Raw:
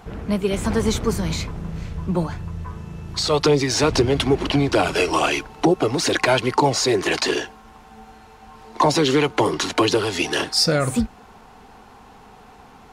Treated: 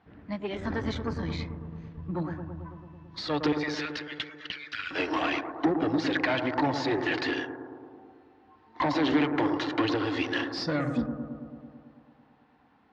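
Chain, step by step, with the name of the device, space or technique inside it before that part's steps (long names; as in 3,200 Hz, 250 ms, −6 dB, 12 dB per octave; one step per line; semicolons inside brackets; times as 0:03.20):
noise reduction from a noise print of the clip's start 10 dB
0:03.52–0:04.91: Butterworth high-pass 1,400 Hz 48 dB per octave
analogue delay pedal into a guitar amplifier (bucket-brigade delay 110 ms, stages 1,024, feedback 73%, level −8 dB; tube saturation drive 14 dB, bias 0.55; loudspeaker in its box 79–4,300 Hz, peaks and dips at 89 Hz +4 dB, 290 Hz +10 dB, 420 Hz −4 dB, 1,800 Hz +7 dB)
level −7 dB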